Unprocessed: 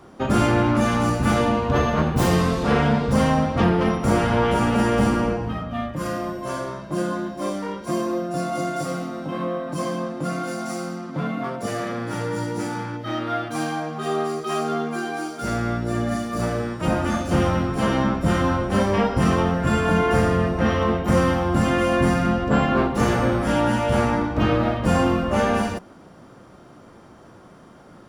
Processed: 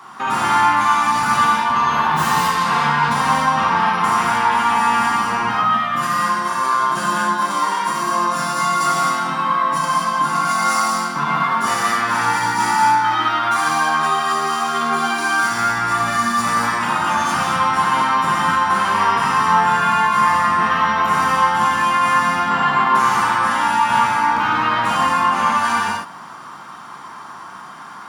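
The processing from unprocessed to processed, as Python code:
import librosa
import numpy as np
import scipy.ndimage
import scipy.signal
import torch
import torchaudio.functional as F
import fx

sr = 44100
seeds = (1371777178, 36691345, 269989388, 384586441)

p1 = scipy.signal.sosfilt(scipy.signal.butter(2, 170.0, 'highpass', fs=sr, output='sos'), x)
p2 = fx.low_shelf_res(p1, sr, hz=730.0, db=-10.5, q=3.0)
p3 = fx.over_compress(p2, sr, threshold_db=-30.0, ratio=-0.5)
p4 = p2 + (p3 * 10.0 ** (0.0 / 20.0))
p5 = fx.rev_gated(p4, sr, seeds[0], gate_ms=280, shape='flat', drr_db=-5.0)
y = p5 * 10.0 ** (-1.5 / 20.0)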